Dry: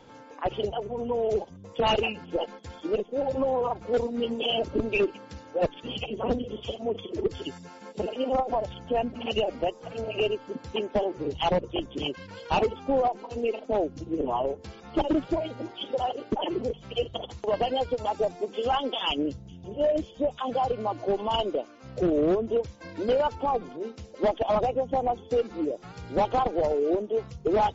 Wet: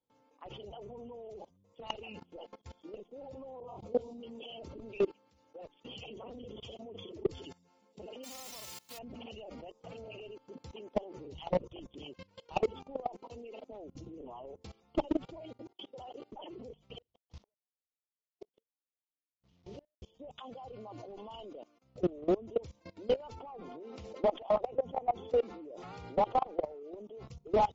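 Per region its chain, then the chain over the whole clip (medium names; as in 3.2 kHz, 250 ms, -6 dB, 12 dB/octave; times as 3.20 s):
3.60–4.23 s: peaking EQ 1.7 kHz -14 dB 0.71 oct + doubling 24 ms -4 dB + phase dispersion highs, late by 43 ms, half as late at 1.2 kHz
5.14–6.43 s: bass shelf 300 Hz -5.5 dB + compression, threshold -29 dBFS
8.23–8.97 s: formants flattened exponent 0.1 + high-pass 67 Hz
15.45–16.22 s: peaking EQ 320 Hz +4 dB 0.4 oct + level held to a coarse grid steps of 19 dB + tape noise reduction on one side only decoder only
16.98–20.02 s: one-bit delta coder 32 kbps, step -43.5 dBFS + inverted gate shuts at -25 dBFS, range -38 dB
23.40–26.83 s: overdrive pedal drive 10 dB, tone 1.5 kHz, clips at -15.5 dBFS + level flattener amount 50%
whole clip: expander -39 dBFS; peaking EQ 1.6 kHz -9.5 dB 0.36 oct; level held to a coarse grid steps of 22 dB; trim -2.5 dB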